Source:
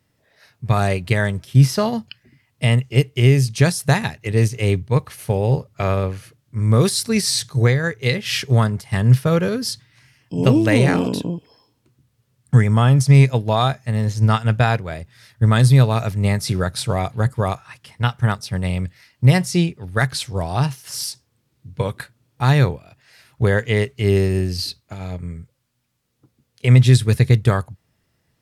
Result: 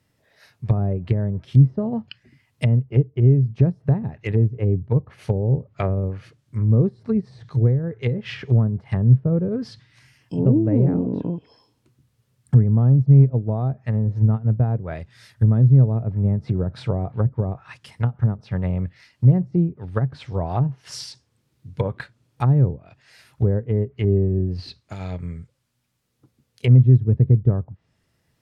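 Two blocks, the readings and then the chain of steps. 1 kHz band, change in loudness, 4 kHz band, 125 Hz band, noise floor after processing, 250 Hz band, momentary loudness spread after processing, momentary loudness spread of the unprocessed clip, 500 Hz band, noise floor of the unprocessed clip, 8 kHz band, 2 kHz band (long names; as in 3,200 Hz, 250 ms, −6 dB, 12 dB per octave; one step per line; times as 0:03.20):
−11.0 dB, −2.0 dB, below −15 dB, −1.0 dB, −69 dBFS, −1.5 dB, 15 LU, 13 LU, −5.5 dB, −68 dBFS, below −20 dB, below −15 dB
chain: treble cut that deepens with the level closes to 380 Hz, closed at −15 dBFS
level −1 dB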